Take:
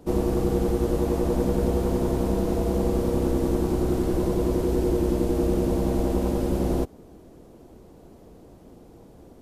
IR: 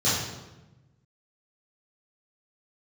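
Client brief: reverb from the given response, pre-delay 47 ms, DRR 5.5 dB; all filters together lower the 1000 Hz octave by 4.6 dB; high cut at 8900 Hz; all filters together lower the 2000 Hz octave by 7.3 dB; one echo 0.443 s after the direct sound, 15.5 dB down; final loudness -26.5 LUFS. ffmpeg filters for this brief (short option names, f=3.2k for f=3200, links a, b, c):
-filter_complex "[0:a]lowpass=8.9k,equalizer=f=1k:t=o:g=-5,equalizer=f=2k:t=o:g=-8,aecho=1:1:443:0.168,asplit=2[a][b];[1:a]atrim=start_sample=2205,adelay=47[c];[b][c]afir=irnorm=-1:irlink=0,volume=-20dB[d];[a][d]amix=inputs=2:normalize=0,volume=-2.5dB"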